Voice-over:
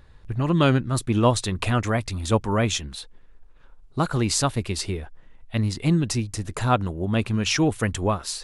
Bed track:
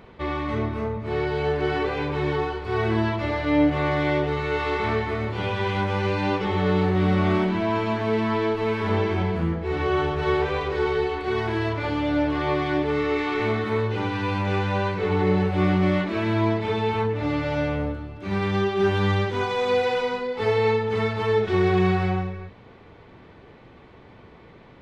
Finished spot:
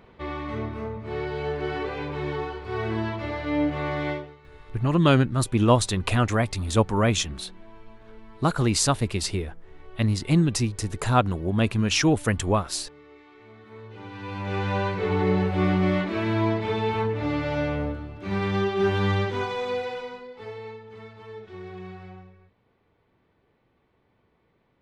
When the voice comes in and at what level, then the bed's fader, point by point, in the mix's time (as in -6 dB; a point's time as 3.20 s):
4.45 s, +0.5 dB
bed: 4.11 s -5 dB
4.38 s -26.5 dB
13.46 s -26.5 dB
14.68 s -1.5 dB
19.31 s -1.5 dB
20.78 s -19.5 dB